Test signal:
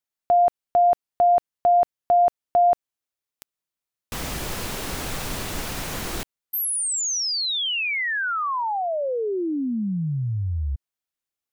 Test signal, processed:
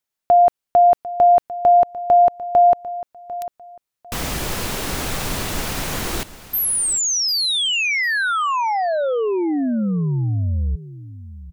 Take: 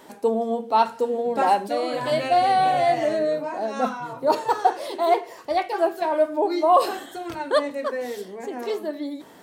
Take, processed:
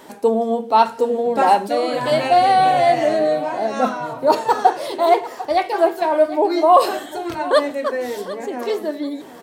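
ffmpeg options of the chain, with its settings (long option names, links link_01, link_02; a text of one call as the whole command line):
ffmpeg -i in.wav -af "aecho=1:1:748|1496:0.158|0.0349,volume=5dB" out.wav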